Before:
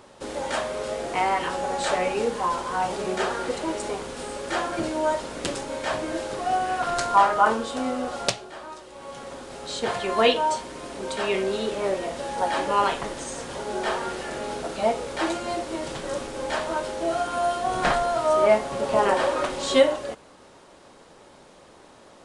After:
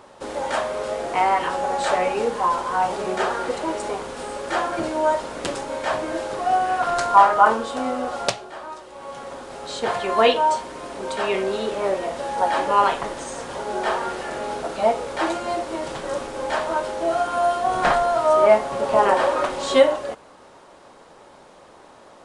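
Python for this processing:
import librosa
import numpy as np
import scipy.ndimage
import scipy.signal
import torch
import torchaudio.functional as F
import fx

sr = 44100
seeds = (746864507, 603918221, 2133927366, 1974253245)

y = fx.peak_eq(x, sr, hz=910.0, db=6.0, octaves=2.1)
y = F.gain(torch.from_numpy(y), -1.0).numpy()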